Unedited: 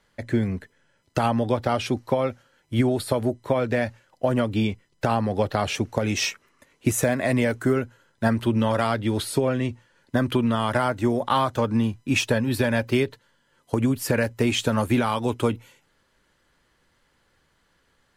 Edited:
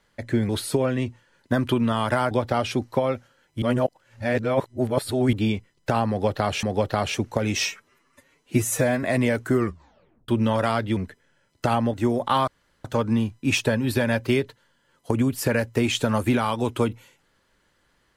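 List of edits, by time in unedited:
0:00.49–0:01.46: swap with 0:09.12–0:10.94
0:02.77–0:04.48: reverse
0:05.24–0:05.78: repeat, 2 plays
0:06.28–0:07.19: time-stretch 1.5×
0:07.69: tape stop 0.75 s
0:11.48: splice in room tone 0.37 s

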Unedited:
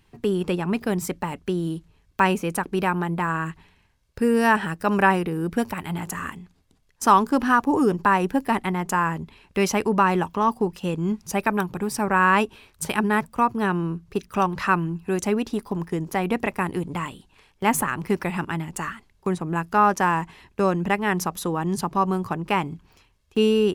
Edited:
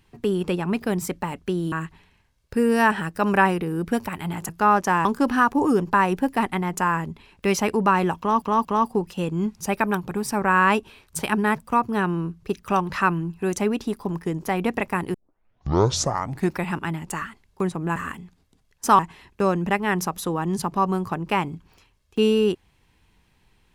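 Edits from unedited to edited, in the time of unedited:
0:01.72–0:03.37: remove
0:06.14–0:07.17: swap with 0:19.62–0:20.18
0:10.31: stutter 0.23 s, 3 plays
0:16.80: tape start 1.46 s

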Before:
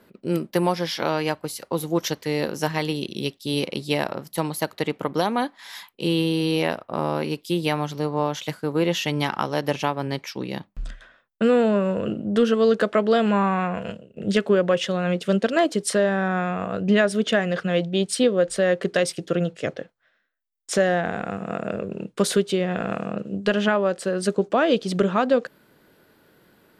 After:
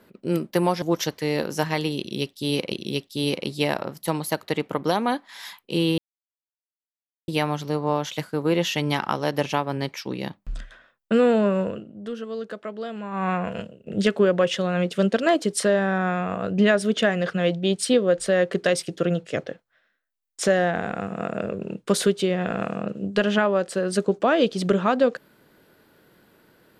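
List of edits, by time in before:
0:00.82–0:01.86: remove
0:03.02–0:03.76: repeat, 2 plays
0:06.28–0:07.58: silence
0:11.93–0:13.59: duck −13.5 dB, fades 0.18 s

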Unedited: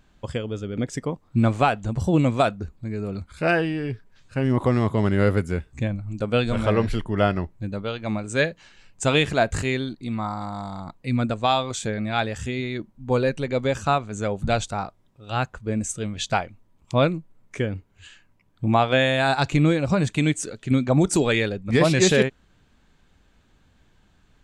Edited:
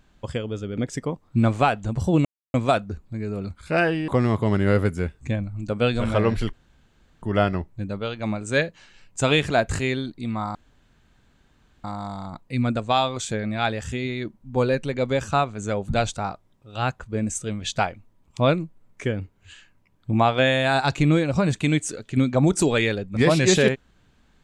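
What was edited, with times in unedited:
0:02.25: splice in silence 0.29 s
0:03.79–0:04.60: remove
0:07.05: splice in room tone 0.69 s
0:10.38: splice in room tone 1.29 s

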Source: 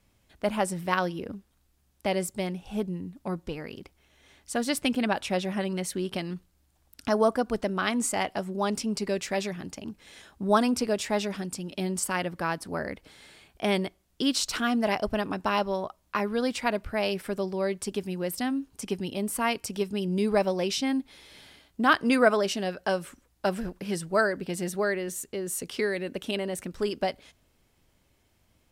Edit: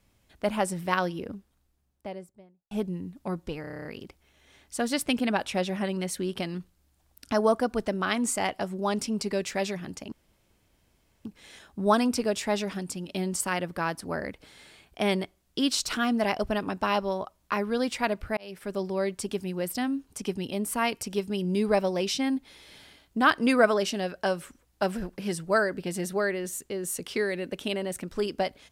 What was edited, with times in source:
0:01.13–0:02.71: fade out and dull
0:03.61: stutter 0.03 s, 9 plays
0:09.88: splice in room tone 1.13 s
0:17.00–0:17.45: fade in

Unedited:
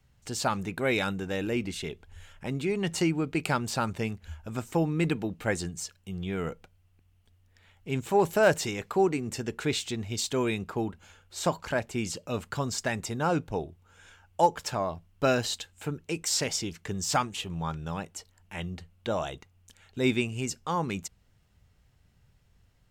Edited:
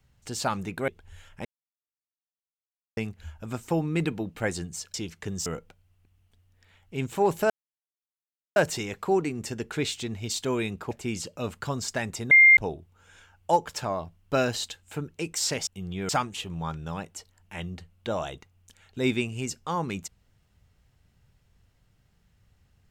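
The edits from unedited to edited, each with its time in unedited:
0:00.88–0:01.92: remove
0:02.49–0:04.01: silence
0:05.98–0:06.40: swap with 0:16.57–0:17.09
0:08.44: splice in silence 1.06 s
0:10.79–0:11.81: remove
0:13.21–0:13.47: beep over 2,110 Hz −11 dBFS

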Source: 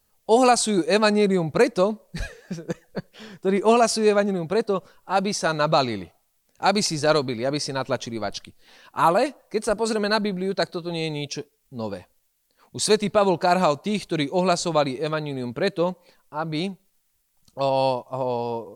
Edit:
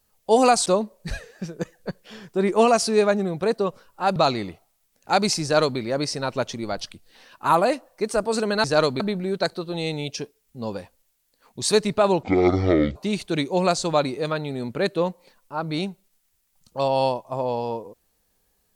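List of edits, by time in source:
0:00.66–0:01.75: remove
0:05.25–0:05.69: remove
0:06.96–0:07.32: duplicate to 0:10.17
0:13.40–0:13.77: play speed 51%

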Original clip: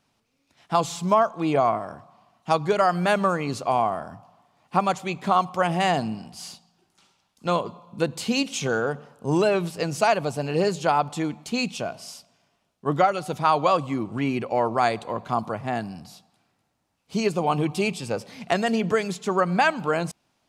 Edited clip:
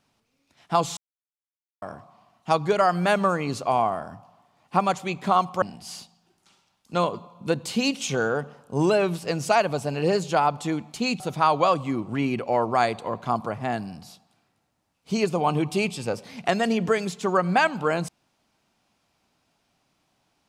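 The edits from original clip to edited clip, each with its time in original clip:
0:00.97–0:01.82: silence
0:05.62–0:06.14: remove
0:11.72–0:13.23: remove

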